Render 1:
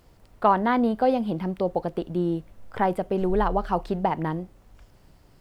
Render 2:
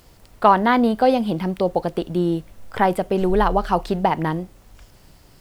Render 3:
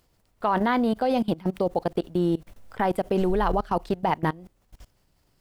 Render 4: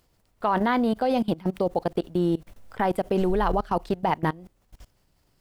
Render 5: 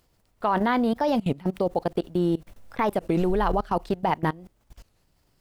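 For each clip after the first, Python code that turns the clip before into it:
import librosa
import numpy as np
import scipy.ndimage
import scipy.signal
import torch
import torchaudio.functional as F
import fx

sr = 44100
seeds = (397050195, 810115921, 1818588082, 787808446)

y1 = fx.high_shelf(x, sr, hz=2400.0, db=8.0)
y1 = y1 * 10.0 ** (4.5 / 20.0)
y2 = fx.level_steps(y1, sr, step_db=22)
y3 = y2
y4 = fx.record_warp(y3, sr, rpm=33.33, depth_cents=250.0)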